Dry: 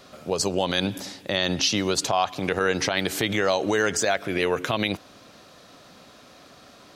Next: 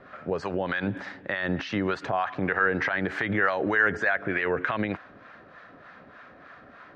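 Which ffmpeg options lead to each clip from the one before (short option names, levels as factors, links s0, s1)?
-filter_complex "[0:a]acrossover=split=690[s0][s1];[s0]aeval=exprs='val(0)*(1-0.7/2+0.7/2*cos(2*PI*3.3*n/s))':c=same[s2];[s1]aeval=exprs='val(0)*(1-0.7/2-0.7/2*cos(2*PI*3.3*n/s))':c=same[s3];[s2][s3]amix=inputs=2:normalize=0,alimiter=limit=0.106:level=0:latency=1:release=46,lowpass=f=1700:t=q:w=3.4,volume=1.19"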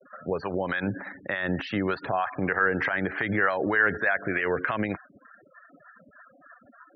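-af "afftfilt=real='re*gte(hypot(re,im),0.0126)':imag='im*gte(hypot(re,im),0.0126)':win_size=1024:overlap=0.75"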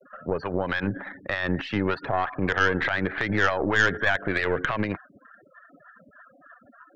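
-af "aeval=exprs='0.316*(cos(1*acos(clip(val(0)/0.316,-1,1)))-cos(1*PI/2))+0.0501*(cos(4*acos(clip(val(0)/0.316,-1,1)))-cos(4*PI/2))':c=same,volume=1.12"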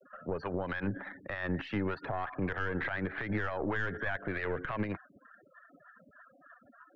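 -filter_complex "[0:a]acrossover=split=2700[s0][s1];[s1]acompressor=threshold=0.00501:ratio=4:attack=1:release=60[s2];[s0][s2]amix=inputs=2:normalize=0,acrossover=split=140[s3][s4];[s4]alimiter=limit=0.119:level=0:latency=1:release=149[s5];[s3][s5]amix=inputs=2:normalize=0,volume=0.501"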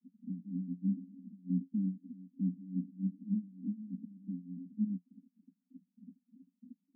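-filter_complex "[0:a]asplit=2[s0][s1];[s1]acompressor=mode=upward:threshold=0.0141:ratio=2.5,volume=0.794[s2];[s0][s2]amix=inputs=2:normalize=0,acrusher=bits=3:mode=log:mix=0:aa=0.000001,asuperpass=centerf=220:order=12:qfactor=2.3"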